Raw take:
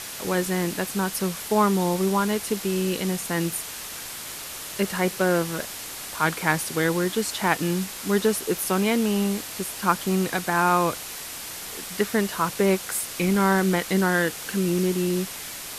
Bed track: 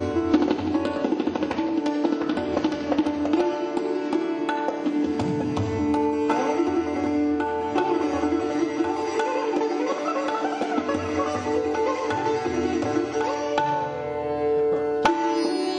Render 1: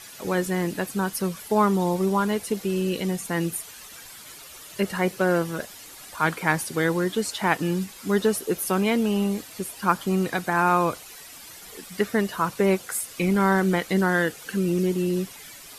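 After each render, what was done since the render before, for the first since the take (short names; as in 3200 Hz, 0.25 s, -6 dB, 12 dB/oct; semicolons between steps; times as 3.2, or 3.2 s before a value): denoiser 11 dB, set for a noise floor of -36 dBFS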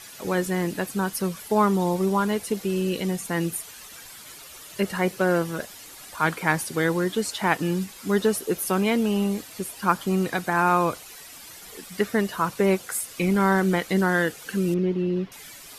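14.74–15.32 air absorption 290 m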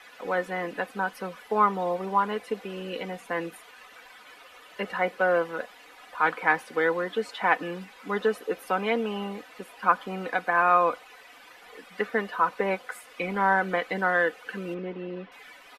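three-band isolator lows -17 dB, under 370 Hz, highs -22 dB, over 3000 Hz; comb 4 ms, depth 56%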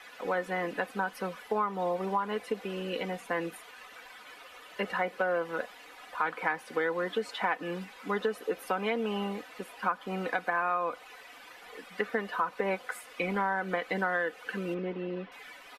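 compressor 6:1, threshold -26 dBFS, peak gain reduction 11 dB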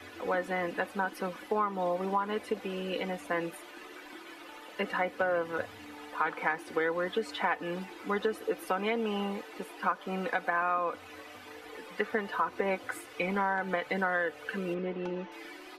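add bed track -26.5 dB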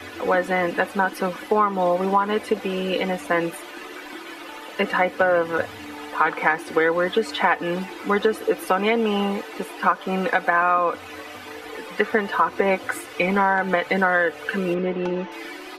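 gain +10.5 dB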